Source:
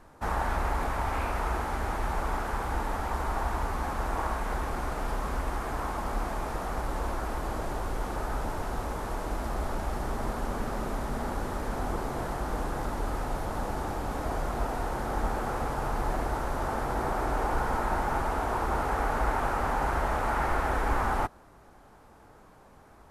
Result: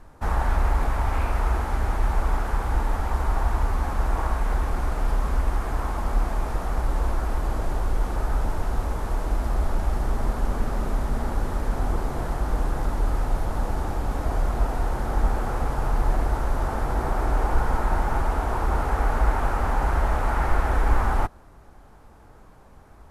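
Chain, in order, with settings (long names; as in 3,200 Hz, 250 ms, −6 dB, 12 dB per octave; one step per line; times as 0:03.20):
low-shelf EQ 99 Hz +11 dB
level +1 dB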